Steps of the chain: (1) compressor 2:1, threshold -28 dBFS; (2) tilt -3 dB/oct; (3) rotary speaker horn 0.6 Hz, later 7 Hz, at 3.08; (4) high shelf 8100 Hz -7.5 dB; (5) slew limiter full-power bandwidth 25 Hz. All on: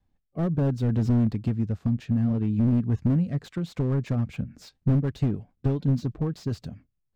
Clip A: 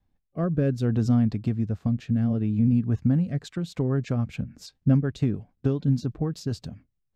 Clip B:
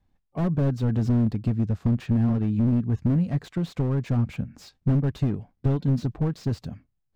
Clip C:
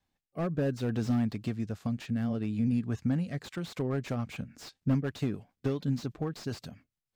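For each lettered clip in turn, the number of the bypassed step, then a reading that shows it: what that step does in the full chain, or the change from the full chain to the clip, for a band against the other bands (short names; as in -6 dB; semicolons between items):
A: 5, distortion -10 dB; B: 3, momentary loudness spread change -2 LU; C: 2, 125 Hz band -7.0 dB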